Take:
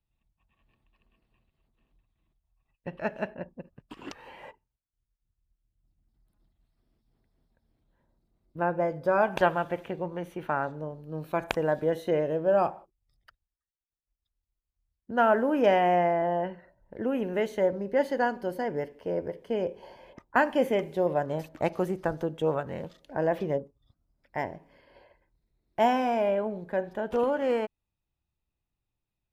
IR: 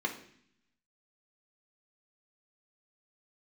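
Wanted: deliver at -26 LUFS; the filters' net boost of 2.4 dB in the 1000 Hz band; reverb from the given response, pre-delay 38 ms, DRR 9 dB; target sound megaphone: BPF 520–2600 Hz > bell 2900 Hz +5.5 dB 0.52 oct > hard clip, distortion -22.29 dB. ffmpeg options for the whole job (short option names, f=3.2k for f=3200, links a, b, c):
-filter_complex "[0:a]equalizer=f=1k:t=o:g=4.5,asplit=2[a][b];[1:a]atrim=start_sample=2205,adelay=38[c];[b][c]afir=irnorm=-1:irlink=0,volume=-14.5dB[d];[a][d]amix=inputs=2:normalize=0,highpass=520,lowpass=2.6k,equalizer=f=2.9k:t=o:w=0.52:g=5.5,asoftclip=type=hard:threshold=-13.5dB,volume=2.5dB"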